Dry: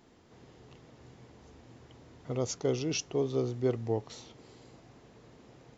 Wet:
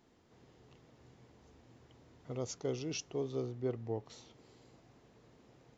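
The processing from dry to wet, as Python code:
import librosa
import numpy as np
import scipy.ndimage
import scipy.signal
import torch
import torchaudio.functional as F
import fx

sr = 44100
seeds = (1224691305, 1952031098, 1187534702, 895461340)

y = fx.high_shelf(x, sr, hz=4900.0, db=-11.5, at=(3.46, 4.06))
y = y * 10.0 ** (-7.0 / 20.0)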